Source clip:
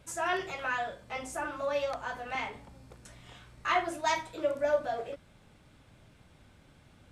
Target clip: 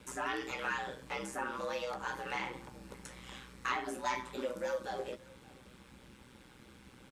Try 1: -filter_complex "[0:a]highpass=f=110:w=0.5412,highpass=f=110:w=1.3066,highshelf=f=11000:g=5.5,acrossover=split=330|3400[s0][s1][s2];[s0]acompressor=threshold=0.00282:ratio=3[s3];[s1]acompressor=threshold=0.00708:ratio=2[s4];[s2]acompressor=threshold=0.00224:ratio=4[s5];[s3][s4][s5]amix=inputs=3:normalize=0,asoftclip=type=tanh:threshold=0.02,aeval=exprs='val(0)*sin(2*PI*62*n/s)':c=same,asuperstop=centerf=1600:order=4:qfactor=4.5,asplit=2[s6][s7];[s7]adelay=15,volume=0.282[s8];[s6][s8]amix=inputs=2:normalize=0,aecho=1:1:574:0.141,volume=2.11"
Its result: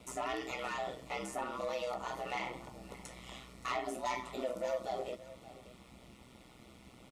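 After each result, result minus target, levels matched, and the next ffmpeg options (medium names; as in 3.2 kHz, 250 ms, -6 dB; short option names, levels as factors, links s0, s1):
saturation: distortion +10 dB; echo-to-direct +6.5 dB; 2 kHz band -3.5 dB
-filter_complex "[0:a]highpass=f=110:w=0.5412,highpass=f=110:w=1.3066,highshelf=f=11000:g=5.5,acrossover=split=330|3400[s0][s1][s2];[s0]acompressor=threshold=0.00282:ratio=3[s3];[s1]acompressor=threshold=0.00708:ratio=2[s4];[s2]acompressor=threshold=0.00224:ratio=4[s5];[s3][s4][s5]amix=inputs=3:normalize=0,asoftclip=type=tanh:threshold=0.0447,aeval=exprs='val(0)*sin(2*PI*62*n/s)':c=same,asuperstop=centerf=1600:order=4:qfactor=4.5,asplit=2[s6][s7];[s7]adelay=15,volume=0.282[s8];[s6][s8]amix=inputs=2:normalize=0,aecho=1:1:574:0.141,volume=2.11"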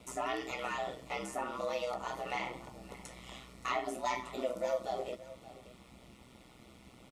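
echo-to-direct +6.5 dB; 2 kHz band -4.0 dB
-filter_complex "[0:a]highpass=f=110:w=0.5412,highpass=f=110:w=1.3066,highshelf=f=11000:g=5.5,acrossover=split=330|3400[s0][s1][s2];[s0]acompressor=threshold=0.00282:ratio=3[s3];[s1]acompressor=threshold=0.00708:ratio=2[s4];[s2]acompressor=threshold=0.00224:ratio=4[s5];[s3][s4][s5]amix=inputs=3:normalize=0,asoftclip=type=tanh:threshold=0.0447,aeval=exprs='val(0)*sin(2*PI*62*n/s)':c=same,asuperstop=centerf=1600:order=4:qfactor=4.5,asplit=2[s6][s7];[s7]adelay=15,volume=0.282[s8];[s6][s8]amix=inputs=2:normalize=0,aecho=1:1:574:0.0668,volume=2.11"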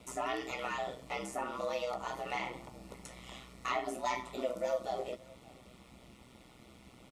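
2 kHz band -4.0 dB
-filter_complex "[0:a]highpass=f=110:w=0.5412,highpass=f=110:w=1.3066,highshelf=f=11000:g=5.5,acrossover=split=330|3400[s0][s1][s2];[s0]acompressor=threshold=0.00282:ratio=3[s3];[s1]acompressor=threshold=0.00708:ratio=2[s4];[s2]acompressor=threshold=0.00224:ratio=4[s5];[s3][s4][s5]amix=inputs=3:normalize=0,asoftclip=type=tanh:threshold=0.0447,aeval=exprs='val(0)*sin(2*PI*62*n/s)':c=same,asuperstop=centerf=670:order=4:qfactor=4.5,asplit=2[s6][s7];[s7]adelay=15,volume=0.282[s8];[s6][s8]amix=inputs=2:normalize=0,aecho=1:1:574:0.0668,volume=2.11"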